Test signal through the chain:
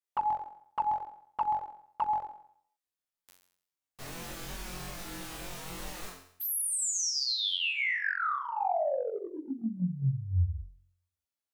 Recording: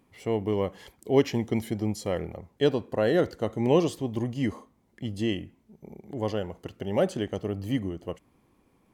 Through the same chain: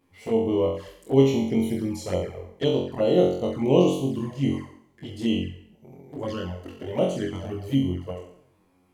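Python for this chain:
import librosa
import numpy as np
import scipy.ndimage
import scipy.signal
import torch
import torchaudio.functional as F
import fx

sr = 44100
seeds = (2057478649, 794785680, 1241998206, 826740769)

y = fx.room_flutter(x, sr, wall_m=3.8, rt60_s=0.63)
y = fx.env_flanger(y, sr, rest_ms=11.8, full_db=-20.0)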